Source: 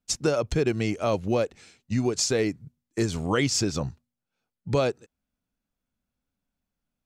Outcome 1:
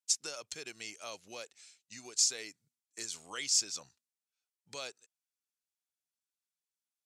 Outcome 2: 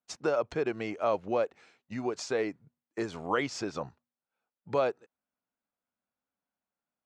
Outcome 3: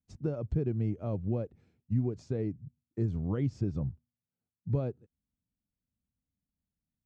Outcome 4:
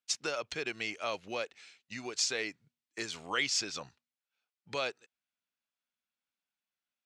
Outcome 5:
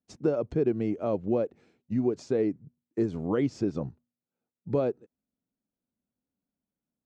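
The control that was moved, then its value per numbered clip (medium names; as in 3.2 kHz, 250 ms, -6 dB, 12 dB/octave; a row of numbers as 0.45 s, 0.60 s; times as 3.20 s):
band-pass filter, frequency: 8 kHz, 950 Hz, 100 Hz, 2.8 kHz, 310 Hz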